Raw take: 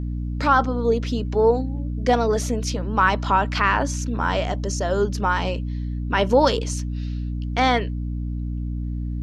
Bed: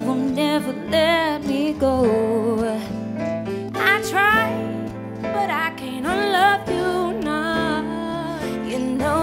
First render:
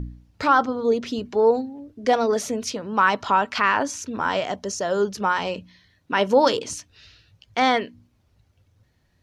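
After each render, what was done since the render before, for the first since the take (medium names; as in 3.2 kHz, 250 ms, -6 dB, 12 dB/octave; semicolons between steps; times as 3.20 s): de-hum 60 Hz, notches 5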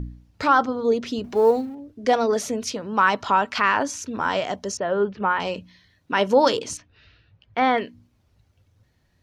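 1.24–1.75 s: companding laws mixed up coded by mu; 4.77–5.40 s: low-pass 2.8 kHz 24 dB/octave; 6.77–7.78 s: low-pass 2.4 kHz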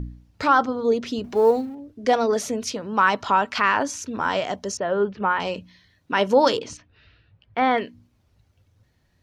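6.58–7.71 s: distance through air 100 m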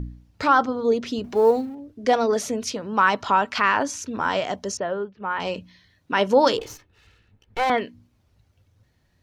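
4.79–5.48 s: dip -14.5 dB, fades 0.32 s; 6.59–7.70 s: comb filter that takes the minimum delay 2.3 ms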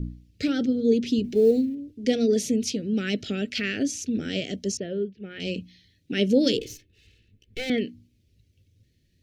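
Chebyshev band-stop 380–2600 Hz, order 2; dynamic bell 200 Hz, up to +6 dB, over -38 dBFS, Q 0.8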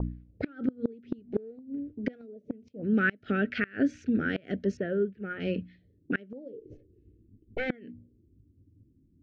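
inverted gate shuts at -16 dBFS, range -27 dB; touch-sensitive low-pass 270–1500 Hz up, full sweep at -33.5 dBFS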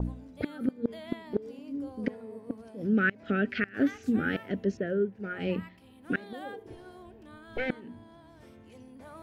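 add bed -28 dB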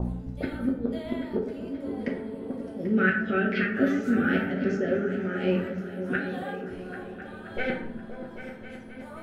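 delay with an opening low-pass 263 ms, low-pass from 200 Hz, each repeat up 2 oct, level -6 dB; plate-style reverb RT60 0.61 s, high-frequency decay 0.6×, DRR -2 dB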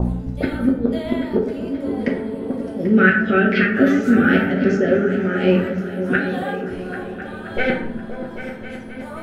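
trim +9.5 dB; peak limiter -2 dBFS, peak gain reduction 2 dB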